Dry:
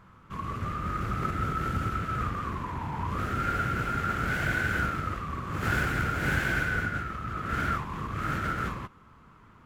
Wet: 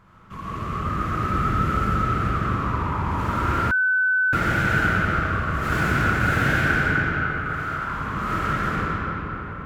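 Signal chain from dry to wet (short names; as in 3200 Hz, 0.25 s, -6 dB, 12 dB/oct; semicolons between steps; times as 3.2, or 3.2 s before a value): 6.88–7.82 ladder high-pass 660 Hz, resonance 35%; reverb RT60 4.7 s, pre-delay 25 ms, DRR -7 dB; 3.71–4.33 bleep 1510 Hz -17 dBFS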